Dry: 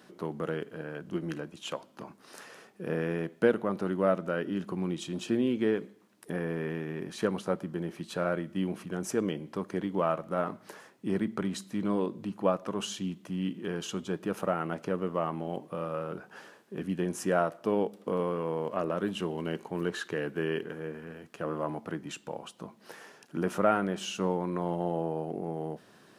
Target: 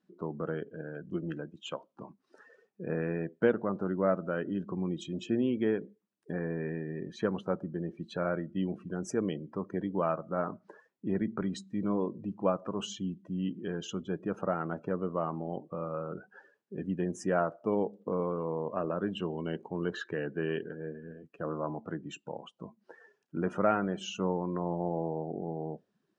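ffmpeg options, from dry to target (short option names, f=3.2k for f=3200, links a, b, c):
-af "afftdn=nr=24:nf=-43,lowpass=f=8.3k:w=0.5412,lowpass=f=8.3k:w=1.3066,lowshelf=f=80:g=8,volume=-2dB"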